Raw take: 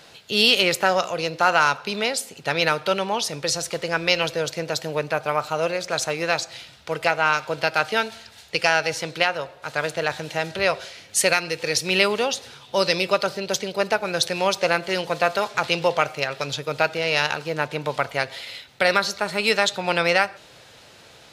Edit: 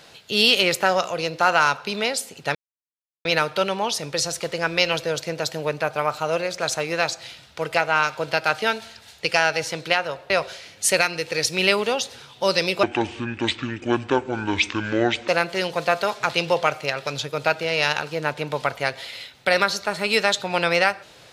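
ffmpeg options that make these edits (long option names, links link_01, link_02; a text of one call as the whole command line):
ffmpeg -i in.wav -filter_complex "[0:a]asplit=5[link_01][link_02][link_03][link_04][link_05];[link_01]atrim=end=2.55,asetpts=PTS-STARTPTS,afade=type=out:start_time=2.546:duration=0.004:curve=hsin,apad=pad_dur=0.7[link_06];[link_02]atrim=start=2.55:end=9.602,asetpts=PTS-STARTPTS,afade=type=in:duration=0.004:curve=hsin[link_07];[link_03]atrim=start=10.618:end=13.154[link_08];[link_04]atrim=start=13.15:end=14.62,asetpts=PTS-STARTPTS,asetrate=26460,aresample=44100[link_09];[link_05]atrim=start=14.616[link_10];[link_06][link_07]concat=n=2:v=0:a=1[link_11];[link_11][link_08]acrossfade=duration=0.004:curve1=hsin:curve2=hsin[link_12];[link_12][link_09]acrossfade=duration=0.004:curve1=hsin:curve2=hsin[link_13];[link_13][link_10]acrossfade=duration=0.004:curve1=hsin:curve2=hsin" out.wav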